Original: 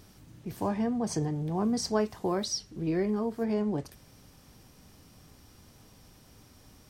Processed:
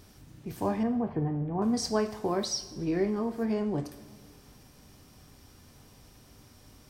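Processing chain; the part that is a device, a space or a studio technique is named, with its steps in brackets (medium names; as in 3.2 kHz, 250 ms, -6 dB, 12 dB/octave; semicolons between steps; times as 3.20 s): 0.83–1.62 s: Bessel low-pass 1.6 kHz, order 8; saturated reverb return (on a send at -14 dB: reverberation RT60 1.8 s, pre-delay 30 ms + saturation -35 dBFS, distortion -7 dB); on the sum: two-slope reverb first 0.55 s, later 2 s, from -18 dB, DRR 7.5 dB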